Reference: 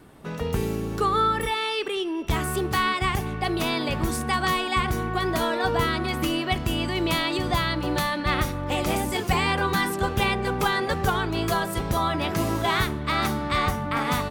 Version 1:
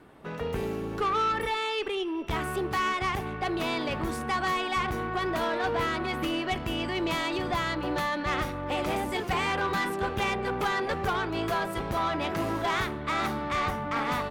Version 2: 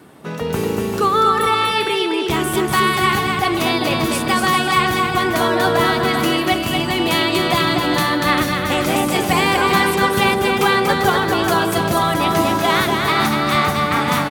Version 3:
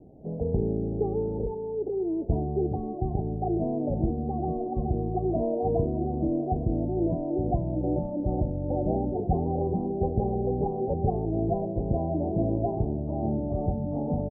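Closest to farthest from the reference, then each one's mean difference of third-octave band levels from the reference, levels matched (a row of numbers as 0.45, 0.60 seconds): 1, 2, 3; 3.0, 4.0, 19.5 decibels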